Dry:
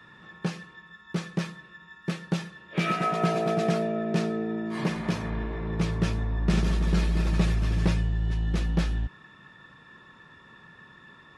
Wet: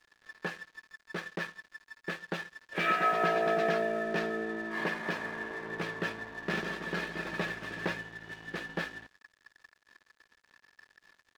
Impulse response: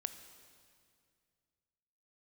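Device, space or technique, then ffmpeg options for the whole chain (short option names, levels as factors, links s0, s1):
pocket radio on a weak battery: -af "highpass=370,lowpass=3700,aeval=exprs='sgn(val(0))*max(abs(val(0))-0.00376,0)':c=same,equalizer=f=1700:t=o:w=0.2:g=10.5"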